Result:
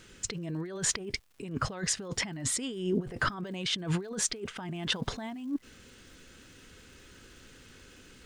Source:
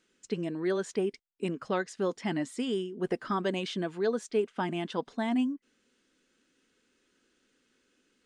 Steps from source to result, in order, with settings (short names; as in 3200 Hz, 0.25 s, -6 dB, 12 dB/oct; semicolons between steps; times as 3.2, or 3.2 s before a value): resonant low shelf 160 Hz +13.5 dB, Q 1.5; negative-ratio compressor -43 dBFS, ratio -1; crackle 200/s -61 dBFS, from 4.74 s 580/s; gain +8 dB